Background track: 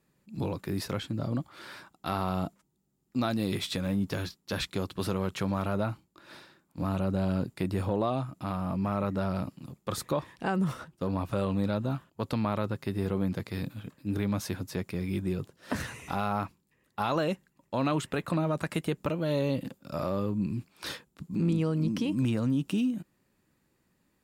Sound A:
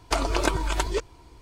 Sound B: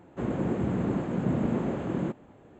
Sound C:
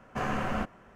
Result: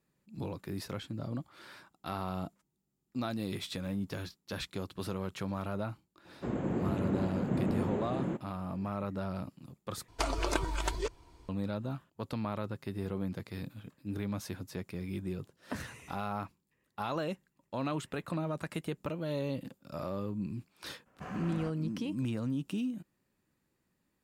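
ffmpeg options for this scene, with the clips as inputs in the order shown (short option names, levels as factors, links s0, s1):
-filter_complex "[0:a]volume=0.473[s0];[3:a]highpass=41[s1];[s0]asplit=2[s2][s3];[s2]atrim=end=10.084[s4];[1:a]atrim=end=1.41,asetpts=PTS-STARTPTS,volume=0.422[s5];[s3]atrim=start=11.486[s6];[2:a]atrim=end=2.59,asetpts=PTS-STARTPTS,volume=0.596,afade=t=in:d=0.004:c=hsin,afade=t=out:st=2.586:d=0.004:c=hsin,adelay=6250[s7];[s1]atrim=end=0.95,asetpts=PTS-STARTPTS,volume=0.224,afade=t=in:d=0.02,afade=t=out:st=0.93:d=0.02,adelay=21050[s8];[s4][s5]acrossfade=d=0.004:c1=hsin:c2=hsin[s9];[s9][s6]acrossfade=d=0.004:c1=hsin:c2=hsin[s10];[s10][s7][s8]amix=inputs=3:normalize=0"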